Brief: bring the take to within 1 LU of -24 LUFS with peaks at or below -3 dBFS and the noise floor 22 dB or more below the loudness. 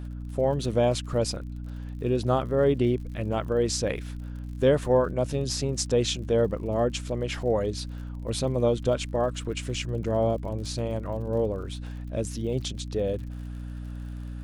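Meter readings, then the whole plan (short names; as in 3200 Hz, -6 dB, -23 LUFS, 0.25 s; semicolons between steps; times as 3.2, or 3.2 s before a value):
ticks 57/s; hum 60 Hz; harmonics up to 300 Hz; hum level -33 dBFS; loudness -27.5 LUFS; peak -10.0 dBFS; loudness target -24.0 LUFS
-> de-click; de-hum 60 Hz, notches 5; gain +3.5 dB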